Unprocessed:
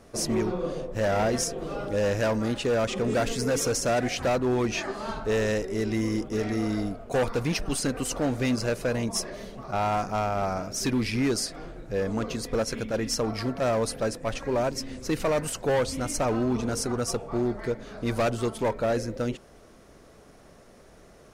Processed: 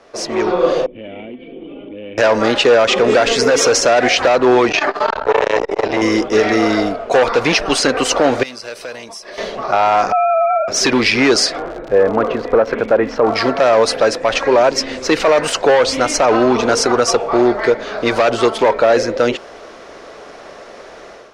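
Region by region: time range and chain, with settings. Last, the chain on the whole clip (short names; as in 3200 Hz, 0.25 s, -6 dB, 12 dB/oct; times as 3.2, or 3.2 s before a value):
0.86–2.18 vocal tract filter i + compressor 5:1, threshold -40 dBFS
4.69–6.02 high shelf 4600 Hz -8.5 dB + comb 6.8 ms, depth 60% + core saturation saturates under 590 Hz
8.43–9.38 pre-emphasis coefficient 0.8 + notch 6800 Hz, Q 7.6 + compressor 10:1, threshold -42 dBFS
10.12–10.68 sine-wave speech + compressor, threshold -31 dBFS
11.57–13.34 LPF 1400 Hz + crackle 100/s -41 dBFS
whole clip: three-band isolator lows -19 dB, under 360 Hz, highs -23 dB, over 5900 Hz; AGC gain up to 11 dB; maximiser +12 dB; gain -2.5 dB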